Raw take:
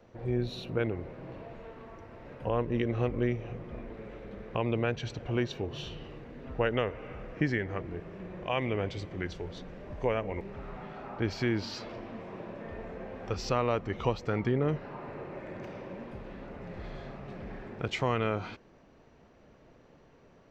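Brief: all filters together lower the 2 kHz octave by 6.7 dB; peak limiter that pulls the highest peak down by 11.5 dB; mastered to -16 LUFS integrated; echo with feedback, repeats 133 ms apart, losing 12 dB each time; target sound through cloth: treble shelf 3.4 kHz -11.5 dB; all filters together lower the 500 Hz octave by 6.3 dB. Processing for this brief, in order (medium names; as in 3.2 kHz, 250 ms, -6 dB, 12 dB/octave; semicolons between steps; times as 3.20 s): peaking EQ 500 Hz -7.5 dB; peaking EQ 2 kHz -4.5 dB; peak limiter -28.5 dBFS; treble shelf 3.4 kHz -11.5 dB; feedback delay 133 ms, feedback 25%, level -12 dB; trim +26 dB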